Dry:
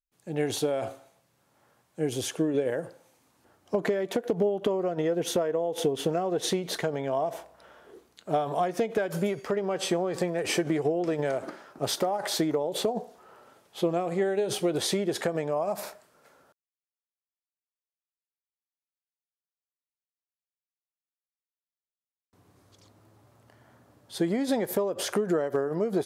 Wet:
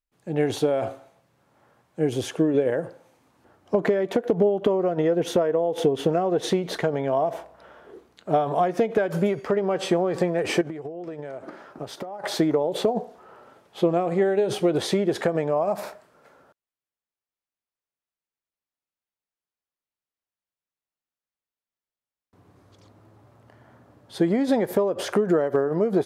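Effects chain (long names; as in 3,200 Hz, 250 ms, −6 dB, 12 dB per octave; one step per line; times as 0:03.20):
high-shelf EQ 3,800 Hz −11.5 dB
0:10.61–0:12.24: downward compressor 12 to 1, threshold −37 dBFS, peak gain reduction 15.5 dB
level +5.5 dB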